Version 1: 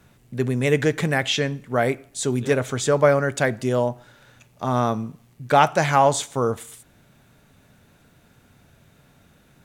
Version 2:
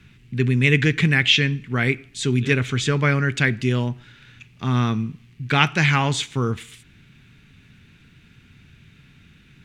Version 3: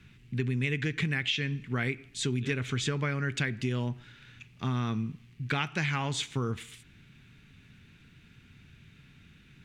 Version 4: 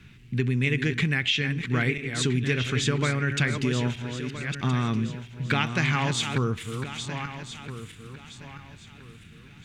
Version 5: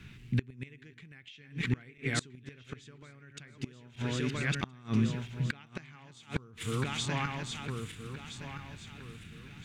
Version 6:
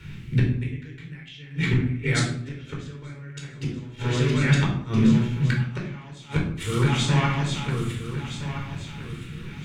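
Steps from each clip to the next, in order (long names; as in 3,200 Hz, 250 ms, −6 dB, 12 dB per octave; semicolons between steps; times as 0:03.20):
drawn EQ curve 160 Hz 0 dB, 400 Hz −7 dB, 590 Hz −21 dB, 2,500 Hz +5 dB, 12,000 Hz −17 dB; level +6 dB
downward compressor 10 to 1, threshold −21 dBFS, peak gain reduction 11 dB; level −5 dB
feedback delay that plays each chunk backwards 660 ms, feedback 53%, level −7.5 dB; level +5 dB
gate with flip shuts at −17 dBFS, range −28 dB
rectangular room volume 890 cubic metres, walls furnished, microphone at 4.5 metres; level +3 dB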